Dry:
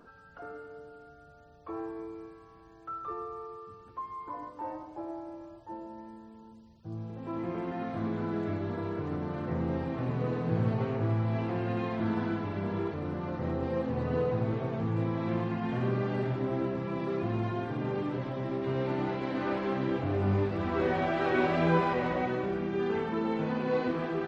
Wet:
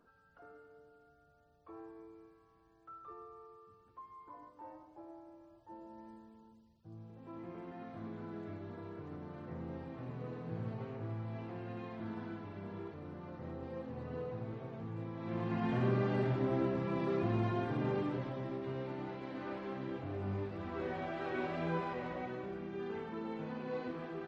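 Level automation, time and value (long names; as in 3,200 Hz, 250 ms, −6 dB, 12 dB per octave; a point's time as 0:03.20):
0:05.45 −13 dB
0:06.11 −6 dB
0:06.91 −12.5 dB
0:15.15 −12.5 dB
0:15.59 −2 dB
0:17.90 −2 dB
0:18.93 −11 dB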